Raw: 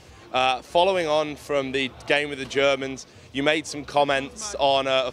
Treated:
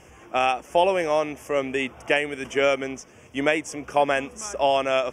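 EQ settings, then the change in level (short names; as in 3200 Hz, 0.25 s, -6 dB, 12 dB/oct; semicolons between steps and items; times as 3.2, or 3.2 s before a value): Butterworth band-stop 4100 Hz, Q 1.6; bell 100 Hz -7.5 dB 0.85 oct; 0.0 dB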